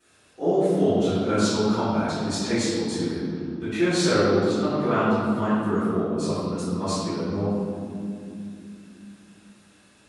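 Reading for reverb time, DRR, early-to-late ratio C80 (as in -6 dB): 2.6 s, -20.5 dB, -1.5 dB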